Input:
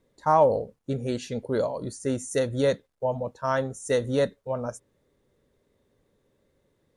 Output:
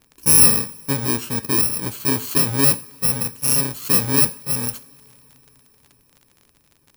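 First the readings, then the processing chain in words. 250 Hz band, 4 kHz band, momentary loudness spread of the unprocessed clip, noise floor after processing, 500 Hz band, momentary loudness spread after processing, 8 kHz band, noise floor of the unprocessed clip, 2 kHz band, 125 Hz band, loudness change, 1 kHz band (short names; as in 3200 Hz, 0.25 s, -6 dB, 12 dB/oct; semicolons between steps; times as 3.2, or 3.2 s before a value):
+5.5 dB, +15.5 dB, 11 LU, -60 dBFS, -6.0 dB, 11 LU, +23.0 dB, -71 dBFS, +8.0 dB, +7.0 dB, +10.5 dB, -4.0 dB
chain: FFT order left unsorted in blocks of 64 samples; two-slope reverb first 0.43 s, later 4.7 s, from -22 dB, DRR 12.5 dB; crackle 44/s -42 dBFS; gain +7 dB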